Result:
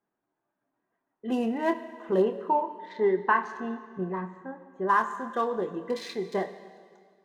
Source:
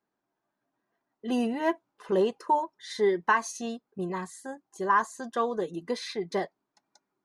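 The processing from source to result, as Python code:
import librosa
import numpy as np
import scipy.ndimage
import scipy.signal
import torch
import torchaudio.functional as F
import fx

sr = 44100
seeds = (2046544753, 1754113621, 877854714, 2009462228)

y = fx.wiener(x, sr, points=9)
y = fx.lowpass(y, sr, hz=2200.0, slope=12, at=(2.21, 4.87), fade=0.02)
y = fx.doubler(y, sr, ms=27.0, db=-9)
y = fx.rev_plate(y, sr, seeds[0], rt60_s=1.9, hf_ratio=1.0, predelay_ms=0, drr_db=10.0)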